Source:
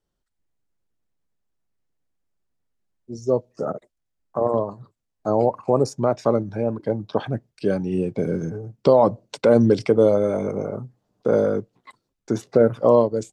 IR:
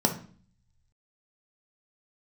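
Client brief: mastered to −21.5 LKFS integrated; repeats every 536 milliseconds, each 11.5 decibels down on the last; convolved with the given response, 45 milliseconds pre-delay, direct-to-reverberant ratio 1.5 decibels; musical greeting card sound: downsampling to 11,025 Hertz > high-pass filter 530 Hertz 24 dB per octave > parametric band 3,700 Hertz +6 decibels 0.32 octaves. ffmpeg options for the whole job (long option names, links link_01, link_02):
-filter_complex "[0:a]aecho=1:1:536|1072|1608:0.266|0.0718|0.0194,asplit=2[link_01][link_02];[1:a]atrim=start_sample=2205,adelay=45[link_03];[link_02][link_03]afir=irnorm=-1:irlink=0,volume=-13dB[link_04];[link_01][link_04]amix=inputs=2:normalize=0,aresample=11025,aresample=44100,highpass=frequency=530:width=0.5412,highpass=frequency=530:width=1.3066,equalizer=frequency=3700:width_type=o:width=0.32:gain=6,volume=-0.5dB"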